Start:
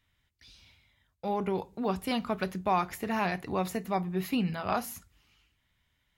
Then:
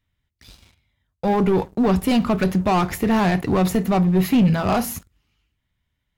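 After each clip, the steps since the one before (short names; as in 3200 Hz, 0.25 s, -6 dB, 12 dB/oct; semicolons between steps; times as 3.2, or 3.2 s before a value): sample leveller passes 3; low shelf 480 Hz +8 dB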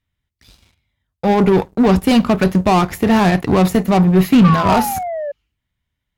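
painted sound fall, 4.44–5.32, 560–1200 Hz -24 dBFS; added harmonics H 7 -22 dB, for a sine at -8 dBFS; gain +5.5 dB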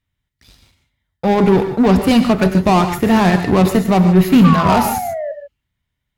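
non-linear reverb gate 0.17 s rising, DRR 7.5 dB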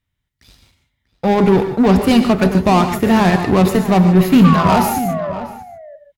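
outdoor echo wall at 110 m, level -13 dB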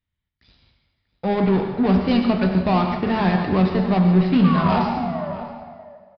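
plate-style reverb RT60 1.7 s, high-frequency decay 0.85×, DRR 5 dB; downsampling 11025 Hz; gain -8 dB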